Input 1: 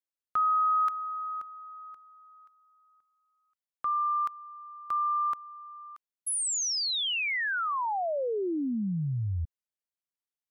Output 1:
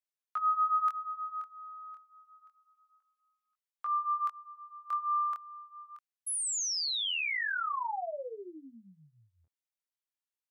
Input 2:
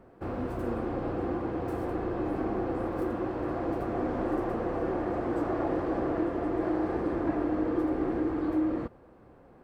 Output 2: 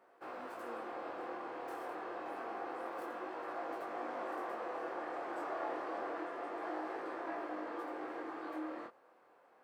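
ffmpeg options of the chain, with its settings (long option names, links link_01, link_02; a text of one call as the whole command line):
ffmpeg -i in.wav -af "highpass=740,flanger=delay=18.5:depth=7.8:speed=0.28" out.wav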